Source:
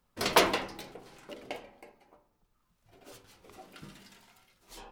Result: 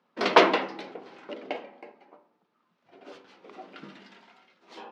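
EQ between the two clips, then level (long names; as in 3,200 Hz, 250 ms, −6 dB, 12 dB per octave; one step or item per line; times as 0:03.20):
high-pass filter 210 Hz 24 dB per octave
low-pass filter 11,000 Hz
high-frequency loss of the air 230 metres
+7.5 dB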